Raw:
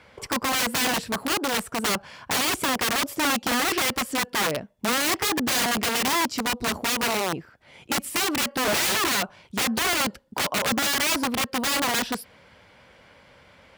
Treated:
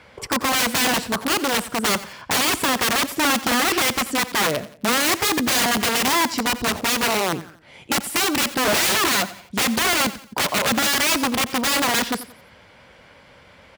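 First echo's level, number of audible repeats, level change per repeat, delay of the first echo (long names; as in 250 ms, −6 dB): −16.0 dB, 3, −8.5 dB, 88 ms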